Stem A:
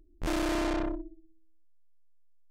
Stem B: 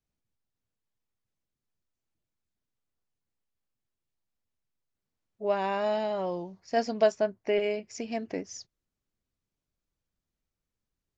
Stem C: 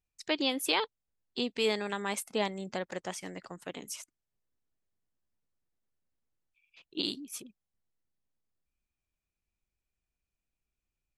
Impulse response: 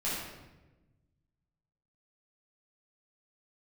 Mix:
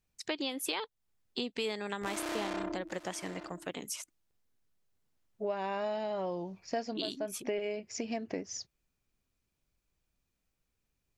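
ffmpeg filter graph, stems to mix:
-filter_complex "[0:a]highpass=f=460:p=1,dynaudnorm=f=160:g=7:m=9dB,adelay=1800,volume=-1.5dB,asplit=2[a][b];[b]volume=-20dB[c];[1:a]volume=2.5dB[d];[2:a]volume=2.5dB,asplit=2[e][f];[f]apad=whole_len=492971[g];[d][g]sidechaincompress=threshold=-41dB:ratio=8:attack=25:release=238[h];[c]aecho=0:1:839:1[i];[a][h][e][i]amix=inputs=4:normalize=0,acompressor=threshold=-33dB:ratio=4"

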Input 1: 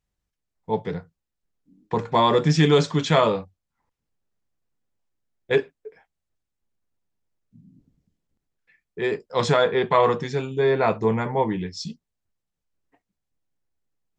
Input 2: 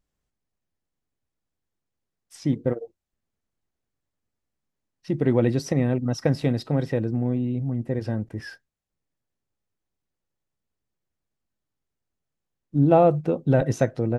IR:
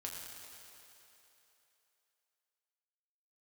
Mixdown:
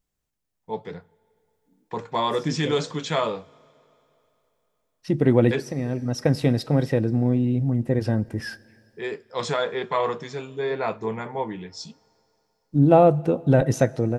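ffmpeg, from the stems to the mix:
-filter_complex "[0:a]lowshelf=f=190:g=-6.5,flanger=delay=0.3:depth=6.2:regen=-89:speed=0.91:shape=triangular,volume=-1dB,asplit=3[a][b][c];[b]volume=-21.5dB[d];[1:a]dynaudnorm=f=540:g=3:m=6.5dB,volume=-2.5dB,asplit=2[e][f];[f]volume=-18dB[g];[c]apad=whole_len=625400[h];[e][h]sidechaincompress=threshold=-37dB:ratio=5:attack=47:release=808[i];[2:a]atrim=start_sample=2205[j];[d][g]amix=inputs=2:normalize=0[k];[k][j]afir=irnorm=-1:irlink=0[l];[a][i][l]amix=inputs=3:normalize=0,highshelf=f=7.5k:g=7"

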